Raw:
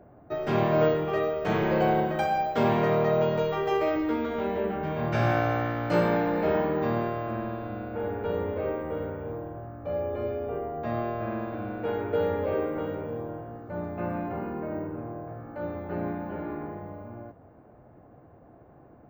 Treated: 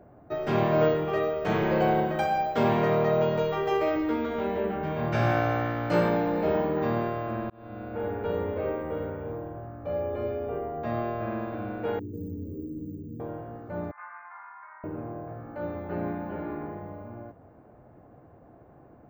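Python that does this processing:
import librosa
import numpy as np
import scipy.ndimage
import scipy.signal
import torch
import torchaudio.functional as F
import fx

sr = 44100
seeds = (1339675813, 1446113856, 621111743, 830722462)

y = fx.peak_eq(x, sr, hz=1700.0, db=-4.0, octaves=1.2, at=(6.09, 6.77))
y = fx.ellip_bandstop(y, sr, low_hz=300.0, high_hz=7100.0, order=3, stop_db=40, at=(11.99, 13.2))
y = fx.ellip_bandpass(y, sr, low_hz=950.0, high_hz=2100.0, order=3, stop_db=50, at=(13.91, 14.84))
y = fx.edit(y, sr, fx.fade_in_span(start_s=7.5, length_s=0.6, curve='qsin'), tone=tone)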